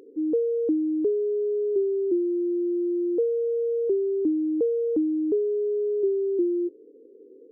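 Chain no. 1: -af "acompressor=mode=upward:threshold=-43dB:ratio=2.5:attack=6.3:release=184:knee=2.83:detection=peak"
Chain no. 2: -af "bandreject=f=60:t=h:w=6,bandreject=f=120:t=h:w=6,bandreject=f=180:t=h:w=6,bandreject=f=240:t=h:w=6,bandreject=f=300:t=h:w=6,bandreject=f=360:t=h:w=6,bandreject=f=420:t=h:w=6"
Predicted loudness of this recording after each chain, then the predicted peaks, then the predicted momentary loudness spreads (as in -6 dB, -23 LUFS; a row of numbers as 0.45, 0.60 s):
-25.0, -25.5 LUFS; -16.0, -15.5 dBFS; 1, 2 LU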